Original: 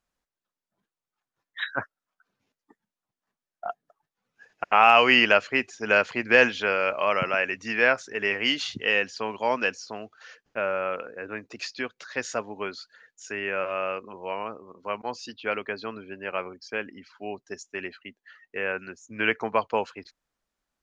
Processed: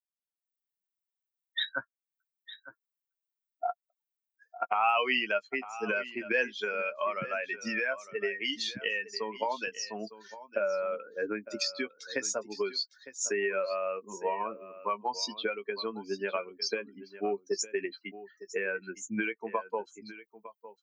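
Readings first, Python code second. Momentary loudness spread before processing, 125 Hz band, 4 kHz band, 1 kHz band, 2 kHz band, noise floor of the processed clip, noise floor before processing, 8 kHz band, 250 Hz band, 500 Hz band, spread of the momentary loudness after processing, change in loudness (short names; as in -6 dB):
19 LU, -9.0 dB, -5.0 dB, -7.0 dB, -8.5 dB, under -85 dBFS, under -85 dBFS, n/a, -5.5 dB, -5.5 dB, 13 LU, -8.0 dB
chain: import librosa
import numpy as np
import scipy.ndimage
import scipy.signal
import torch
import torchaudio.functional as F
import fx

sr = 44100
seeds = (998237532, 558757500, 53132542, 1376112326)

y = fx.bin_expand(x, sr, power=2.0)
y = fx.recorder_agc(y, sr, target_db=-15.5, rise_db_per_s=59.0, max_gain_db=30)
y = scipy.signal.sosfilt(scipy.signal.butter(2, 230.0, 'highpass', fs=sr, output='sos'), y)
y = fx.doubler(y, sr, ms=15.0, db=-10.5)
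y = y + 10.0 ** (-15.5 / 20.0) * np.pad(y, (int(907 * sr / 1000.0), 0))[:len(y)]
y = y * 10.0 ** (-7.5 / 20.0)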